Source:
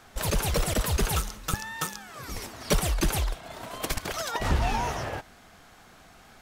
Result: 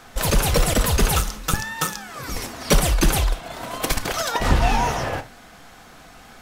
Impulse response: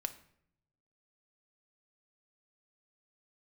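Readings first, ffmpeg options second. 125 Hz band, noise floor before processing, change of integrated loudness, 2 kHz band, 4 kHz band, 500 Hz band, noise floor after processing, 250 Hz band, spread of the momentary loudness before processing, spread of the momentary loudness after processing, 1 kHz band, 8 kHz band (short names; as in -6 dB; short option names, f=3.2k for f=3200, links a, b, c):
+6.5 dB, -54 dBFS, +7.5 dB, +7.5 dB, +7.5 dB, +7.0 dB, -46 dBFS, +7.5 dB, 11 LU, 12 LU, +7.5 dB, +7.5 dB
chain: -filter_complex "[1:a]atrim=start_sample=2205,atrim=end_sample=3969[a];[0:a][a]afir=irnorm=-1:irlink=0,volume=8dB"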